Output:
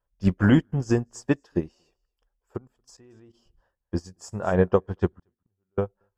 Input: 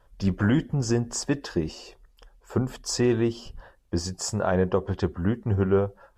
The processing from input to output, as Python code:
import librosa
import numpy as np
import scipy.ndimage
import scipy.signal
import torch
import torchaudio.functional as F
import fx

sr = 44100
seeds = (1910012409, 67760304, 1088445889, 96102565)

p1 = fx.peak_eq(x, sr, hz=4100.0, db=-3.5, octaves=0.67)
p2 = fx.level_steps(p1, sr, step_db=17, at=(2.56, 3.33), fade=0.02)
p3 = fx.gate_flip(p2, sr, shuts_db=-24.0, range_db=-34, at=(5.12, 5.78))
p4 = p3 + fx.echo_single(p3, sr, ms=230, db=-23.5, dry=0)
p5 = fx.upward_expand(p4, sr, threshold_db=-37.0, expansion=2.5)
y = p5 * librosa.db_to_amplitude(6.0)